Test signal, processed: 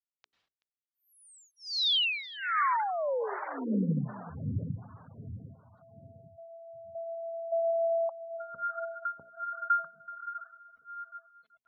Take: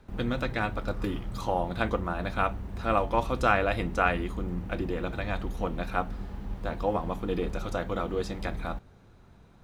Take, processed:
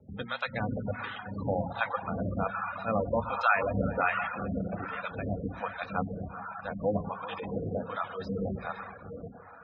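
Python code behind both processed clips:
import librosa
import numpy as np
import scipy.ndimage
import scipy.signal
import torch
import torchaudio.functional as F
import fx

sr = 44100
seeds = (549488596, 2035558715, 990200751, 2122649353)

p1 = fx.rev_plate(x, sr, seeds[0], rt60_s=4.8, hf_ratio=0.45, predelay_ms=80, drr_db=2.5)
p2 = fx.harmonic_tremolo(p1, sr, hz=1.3, depth_pct=100, crossover_hz=670.0)
p3 = np.clip(10.0 ** (19.5 / 20.0) * p2, -1.0, 1.0) / 10.0 ** (19.5 / 20.0)
p4 = fx.dereverb_blind(p3, sr, rt60_s=1.2)
p5 = scipy.signal.sosfilt(scipy.signal.butter(4, 80.0, 'highpass', fs=sr, output='sos'), p4)
p6 = fx.peak_eq(p5, sr, hz=340.0, db=-13.0, octaves=0.23)
p7 = p6 + fx.echo_feedback(p6, sr, ms=379, feedback_pct=23, wet_db=-18.5, dry=0)
p8 = fx.quant_dither(p7, sr, seeds[1], bits=12, dither='none')
p9 = fx.spec_gate(p8, sr, threshold_db=-20, keep='strong')
p10 = scipy.signal.sosfilt(scipy.signal.butter(4, 4400.0, 'lowpass', fs=sr, output='sos'), p9)
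p11 = fx.hum_notches(p10, sr, base_hz=60, count=7)
y = p11 * 10.0 ** (4.0 / 20.0)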